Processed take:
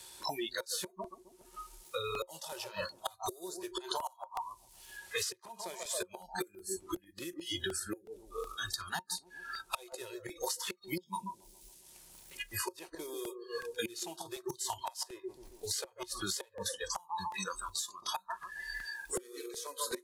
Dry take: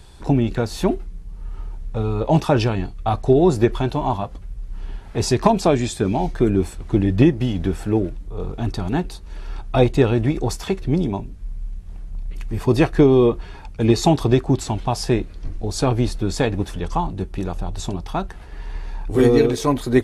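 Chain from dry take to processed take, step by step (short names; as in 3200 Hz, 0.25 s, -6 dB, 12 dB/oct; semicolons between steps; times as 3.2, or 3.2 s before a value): CVSD 64 kbps; high shelf 2500 Hz +6 dB; resonator 110 Hz, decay 0.96 s, harmonics all, mix 30%; on a send: analogue delay 0.137 s, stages 1024, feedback 51%, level -6 dB; on the sum: spectral noise reduction 29 dB; flipped gate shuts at -16 dBFS, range -30 dB; tilt +4.5 dB/oct; small resonant body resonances 360/540/920 Hz, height 11 dB, ringing for 80 ms; compressor 8:1, threshold -34 dBFS, peak gain reduction 21.5 dB; crackling interface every 0.37 s, samples 64, repeat, from 0.67; three-band squash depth 70%; gain +1 dB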